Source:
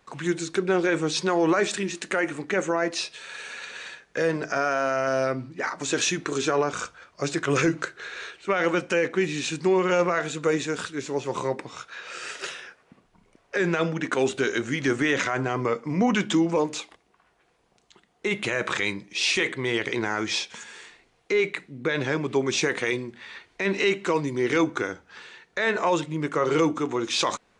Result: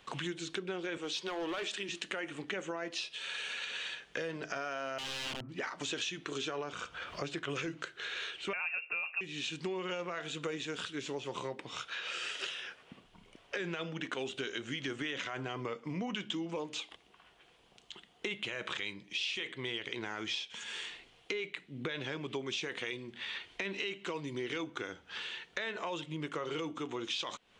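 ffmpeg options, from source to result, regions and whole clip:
-filter_complex "[0:a]asettb=1/sr,asplit=3[a][b][c];[a]atrim=end=0.974[d];[b]atrim=start=0.97:end=1.89,asetpts=PTS-STARTPTS,afade=t=in:d=0.004:c=qsin,afade=t=out:st=0.916:d=0.004:c=qsin,highpass=300,volume=20.5dB,asoftclip=hard,volume=-20.5dB[e];[c]atrim=start=1.886[f];[d][e]acrossfade=d=0.004:c1=hsin:c2=qsin[g];[g][f]acrossfade=d=0.004:c1=qsin:c2=hsin,asettb=1/sr,asplit=3[h][i][j];[h]atrim=end=4.984[k];[i]atrim=start=4.98:end=5.49,asetpts=PTS-STARTPTS,afade=t=in:d=0.004:c=qsin,afade=t=out:st=0.506:d=0.004:c=qsin,lowpass=f=1.5k:w=0.5412,lowpass=f=1.5k:w=1.3066,aeval=exprs='(mod(21.1*val(0)+1,2)-1)/21.1':c=same[l];[j]atrim=start=5.486[m];[k][l]acrossfade=d=0.004:c1=hsin:c2=qsin[n];[n][m]acrossfade=d=0.004:c1=qsin:c2=hsin,asettb=1/sr,asplit=3[o][p][q];[o]atrim=end=6.724[r];[p]atrim=start=6.72:end=7.49,asetpts=PTS-STARTPTS,afade=t=in:d=0.004:c=qsin,afade=t=out:st=0.766:d=0.004:c=qsin,equalizer=f=7k:w=0.56:g=-6.5,acompressor=mode=upward:threshold=-32dB:ratio=2.5:attack=3.2:release=140:knee=2.83:detection=peak[s];[q]atrim=start=7.486[t];[r][s]acrossfade=d=0.004:c1=hsin:c2=qsin[u];[u][t]acrossfade=d=0.004:c1=qsin:c2=hsin,asettb=1/sr,asplit=3[v][w][x];[v]atrim=end=8.534[y];[w]atrim=start=8.53:end=9.21,asetpts=PTS-STARTPTS,afade=t=in:d=0.004:c=qsin,afade=t=out:st=0.676:d=0.004:c=qsin,equalizer=f=110:t=o:w=0.74:g=13,lowpass=f=2.5k:t=q:w=0.5098,lowpass=f=2.5k:t=q:w=0.6013,lowpass=f=2.5k:t=q:w=0.9,lowpass=f=2.5k:t=q:w=2.563,afreqshift=-2900[z];[x]atrim=start=9.206[aa];[y][z]acrossfade=d=0.004:c1=hsin:c2=qsin[ab];[ab][aa]acrossfade=d=0.004:c1=qsin:c2=hsin,acrossover=split=8600[ac][ad];[ad]acompressor=threshold=-54dB:ratio=4:attack=1:release=60[ae];[ac][ae]amix=inputs=2:normalize=0,equalizer=f=3.1k:w=2.4:g=12.5,acompressor=threshold=-37dB:ratio=5"

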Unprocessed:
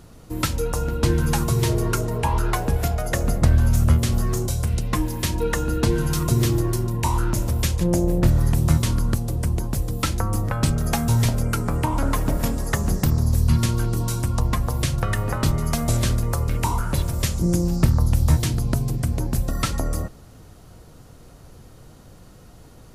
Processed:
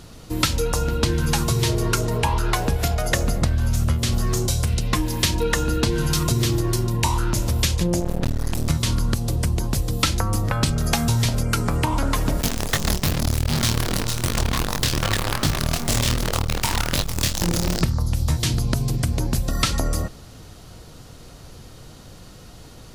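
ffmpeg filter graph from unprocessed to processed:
-filter_complex "[0:a]asettb=1/sr,asplit=3[a][b][c];[a]atrim=end=8.004[d];[b]atrim=start=8:end=8.7,asetpts=PTS-STARTPTS,afade=t=in:d=0.004:c=qsin,afade=t=out:st=0.696:d=0.004:c=qsin,bandreject=f=50:t=h:w=6,bandreject=f=100:t=h:w=6,bandreject=f=150:t=h:w=6,bandreject=f=200:t=h:w=6,bandreject=f=250:t=h:w=6,bandreject=f=300:t=h:w=6,bandreject=f=350:t=h:w=6,aeval=exprs='max(val(0),0)':c=same[e];[c]atrim=start=8.696[f];[d][e]acrossfade=d=0.004:c1=hsin:c2=qsin[g];[g][f]acrossfade=d=0.004:c1=qsin:c2=hsin,asettb=1/sr,asplit=3[h][i][j];[h]atrim=end=12.414[k];[i]atrim=start=12.41:end=17.81,asetpts=PTS-STARTPTS,afade=t=in:d=0.004:c=qsin,afade=t=out:st=5.396:d=0.004:c=qsin,acrusher=bits=4:dc=4:mix=0:aa=0.000001,flanger=delay=20:depth=7.5:speed=2.6[l];[j]atrim=start=17.806[m];[k][l]acrossfade=d=0.004:c1=hsin:c2=qsin[n];[n][m]acrossfade=d=0.004:c1=qsin:c2=hsin,acompressor=threshold=-20dB:ratio=6,equalizer=f=4k:t=o:w=1.8:g=7.5,volume=3dB"

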